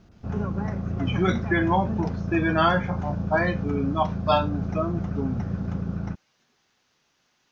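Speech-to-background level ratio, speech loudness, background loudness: 4.0 dB, −26.0 LKFS, −30.0 LKFS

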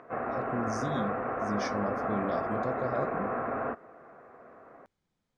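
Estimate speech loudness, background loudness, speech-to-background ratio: −36.5 LKFS, −33.0 LKFS, −3.5 dB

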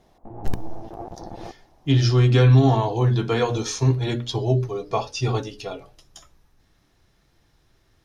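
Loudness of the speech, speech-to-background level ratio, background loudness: −20.5 LKFS, 18.5 dB, −39.0 LKFS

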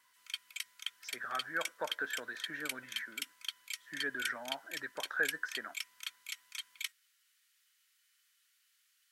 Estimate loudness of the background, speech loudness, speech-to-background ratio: −42.0 LKFS, −40.0 LKFS, 2.0 dB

